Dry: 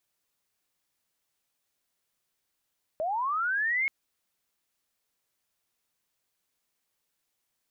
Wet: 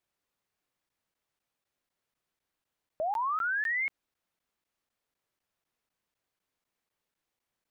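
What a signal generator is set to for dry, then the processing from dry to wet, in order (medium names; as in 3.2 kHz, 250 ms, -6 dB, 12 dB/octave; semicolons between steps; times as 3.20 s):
sweep linear 600 Hz -> 2.2 kHz -27 dBFS -> -24 dBFS 0.88 s
treble shelf 3.6 kHz -11 dB; crackling interface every 0.25 s, samples 512, zero, from 0.89 s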